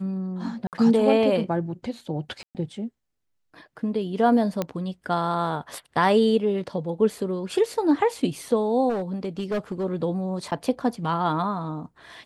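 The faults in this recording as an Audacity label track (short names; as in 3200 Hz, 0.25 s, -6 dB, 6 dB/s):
0.670000	0.730000	gap 58 ms
2.430000	2.550000	gap 0.118 s
4.620000	4.620000	pop -12 dBFS
8.890000	9.850000	clipped -22.5 dBFS
10.510000	10.520000	gap 8.1 ms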